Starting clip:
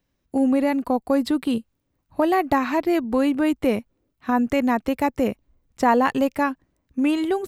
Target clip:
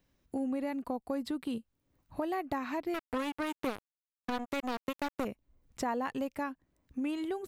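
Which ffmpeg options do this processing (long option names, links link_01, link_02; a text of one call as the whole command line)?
ffmpeg -i in.wav -filter_complex "[0:a]acompressor=threshold=-44dB:ratio=2,asettb=1/sr,asplit=3[link_01][link_02][link_03];[link_01]atrim=end=2.944[link_04];[link_02]atrim=start=2.94:end=5.25,asetpts=PTS-STARTPTS,afade=type=in:duration=0.004:curve=qsin,afade=type=out:start_time=2.306:duration=0.004:curve=qsin,acrusher=bits=4:mix=0:aa=0.5[link_05];[link_03]atrim=start=5.246[link_06];[link_04][link_05]acrossfade=duration=0.004:curve1=hsin:curve2=qsin[link_07];[link_07][link_06]acrossfade=duration=0.004:curve1=qsin:curve2=hsin" out.wav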